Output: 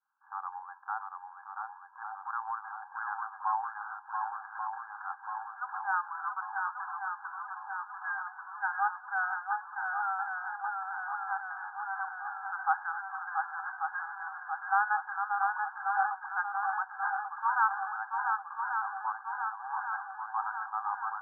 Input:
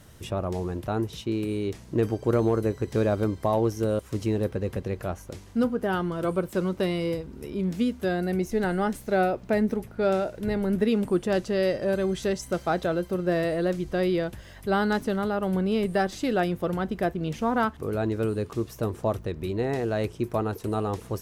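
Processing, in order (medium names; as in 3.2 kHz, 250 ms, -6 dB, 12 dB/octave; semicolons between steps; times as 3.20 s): expander -37 dBFS; 18.07–18.64 s: level held to a coarse grid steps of 22 dB; brick-wall FIR band-pass 760–1700 Hz; shuffle delay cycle 1138 ms, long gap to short 1.5:1, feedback 63%, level -4.5 dB; trim +1.5 dB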